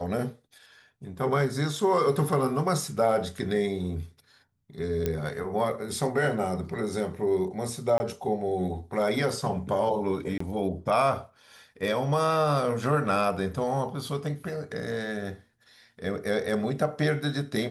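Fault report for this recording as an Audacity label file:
5.060000	5.060000	pop -14 dBFS
7.980000	8.000000	dropout 20 ms
10.380000	10.400000	dropout 24 ms

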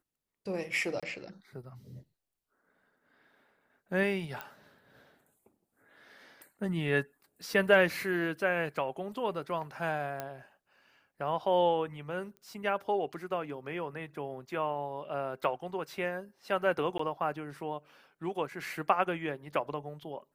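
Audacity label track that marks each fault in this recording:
1.000000	1.030000	dropout 26 ms
4.410000	4.410000	pop -23 dBFS
10.200000	10.200000	pop -21 dBFS
12.370000	12.370000	pop -36 dBFS
16.980000	16.990000	dropout 14 ms

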